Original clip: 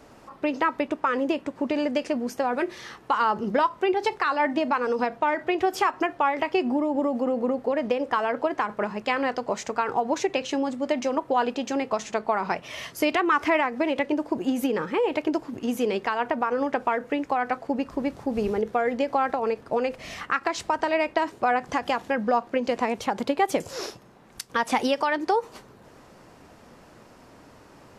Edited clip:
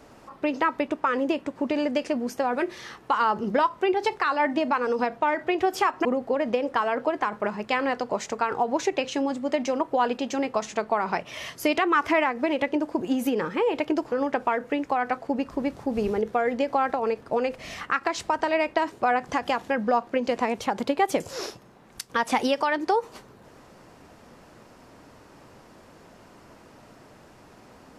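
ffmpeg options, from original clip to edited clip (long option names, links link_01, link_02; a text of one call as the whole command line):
ffmpeg -i in.wav -filter_complex "[0:a]asplit=3[link_01][link_02][link_03];[link_01]atrim=end=6.052[link_04];[link_02]atrim=start=7.418:end=15.492[link_05];[link_03]atrim=start=16.518[link_06];[link_04][link_05]acrossfade=duration=0.004:curve1=hsin:curve2=hsin[link_07];[link_07][link_06]acrossfade=duration=0.004:curve1=hsin:curve2=hsin" out.wav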